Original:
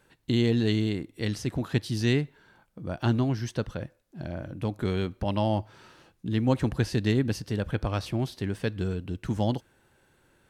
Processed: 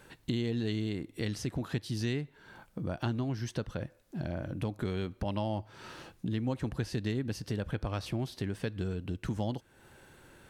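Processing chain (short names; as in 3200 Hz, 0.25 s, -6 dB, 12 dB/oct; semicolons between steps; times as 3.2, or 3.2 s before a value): compressor 3:1, threshold -43 dBFS, peak gain reduction 18.5 dB; gain +7.5 dB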